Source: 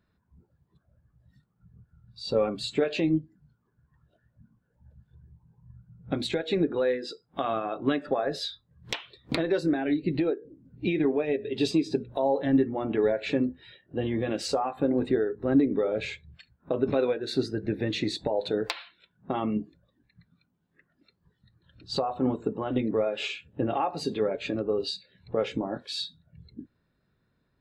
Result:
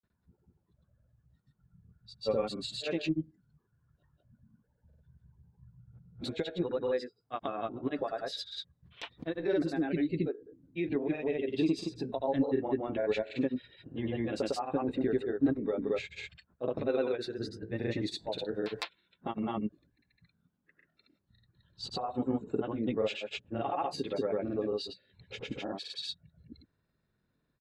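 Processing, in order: grains 0.1 s, grains 20/s, spray 0.138 s, pitch spread up and down by 0 st; gain -4 dB

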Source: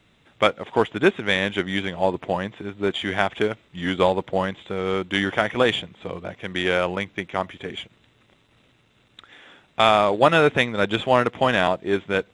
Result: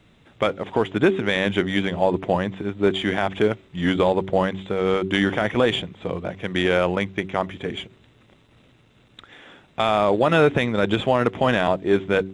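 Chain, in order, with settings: tilt shelf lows +3 dB, about 670 Hz; de-hum 95.58 Hz, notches 4; maximiser +10 dB; gain -6.5 dB

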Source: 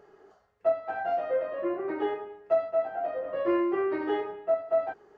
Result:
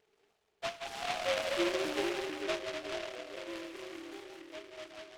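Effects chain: Doppler pass-by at 1.61, 13 m/s, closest 3.4 m; on a send: split-band echo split 550 Hz, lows 0.444 s, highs 0.177 s, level -4 dB; on the sum: vibrato 7.2 Hz 26 cents; noise-modulated delay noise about 2000 Hz, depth 0.17 ms; gain -1.5 dB

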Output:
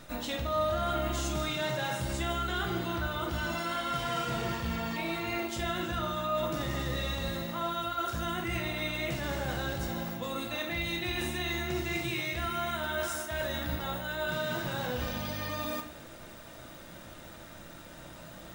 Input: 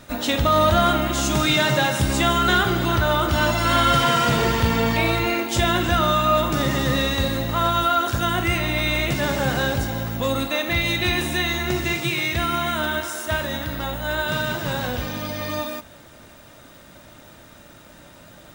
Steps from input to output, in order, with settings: reverse; compressor 6:1, threshold -29 dBFS, peak gain reduction 14.5 dB; reverse; reverb RT60 0.55 s, pre-delay 6 ms, DRR 3 dB; gain -3.5 dB

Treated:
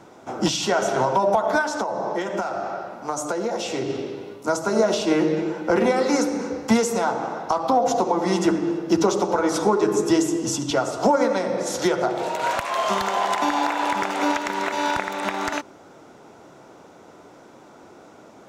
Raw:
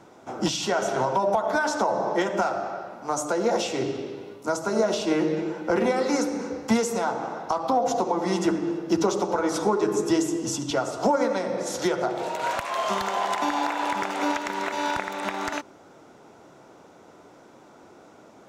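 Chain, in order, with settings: 1.61–3.9 compressor, threshold -26 dBFS, peak gain reduction 7.5 dB; gain +3.5 dB

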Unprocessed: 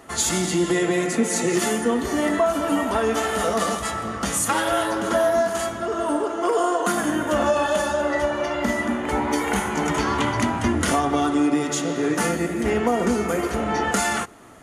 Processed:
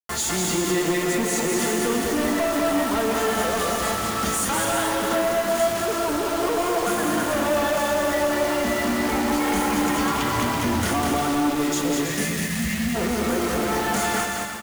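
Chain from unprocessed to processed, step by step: 9.11–10.19 comb 3.7 ms, depth 54%; 12.04–12.95 spectral delete 260–1600 Hz; in parallel at -3 dB: compressor, threshold -33 dBFS, peak gain reduction 16 dB; on the sum: bit-crush 5-bit; soft clip -21 dBFS, distortion -10 dB; on a send: bouncing-ball echo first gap 0.2 s, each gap 0.65×, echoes 5

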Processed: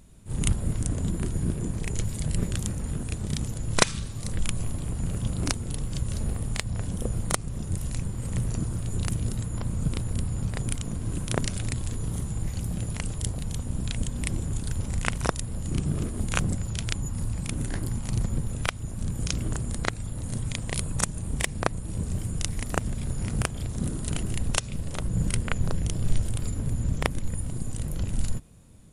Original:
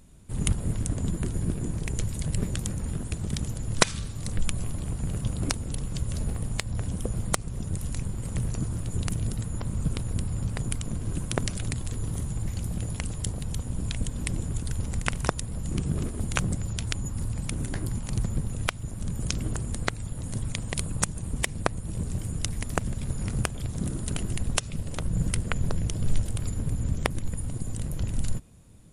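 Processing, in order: vibrato 1.9 Hz 12 cents; on a send: reverse echo 34 ms -7 dB

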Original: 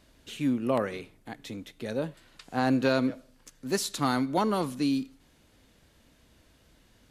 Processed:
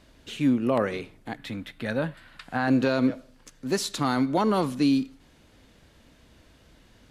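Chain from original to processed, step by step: high shelf 8200 Hz -9 dB; in parallel at -1 dB: vocal rider 2 s; on the sum: limiter -13 dBFS, peak gain reduction 6 dB; 1.37–2.68 fifteen-band EQ 400 Hz -9 dB, 1600 Hz +6 dB, 6300 Hz -8 dB

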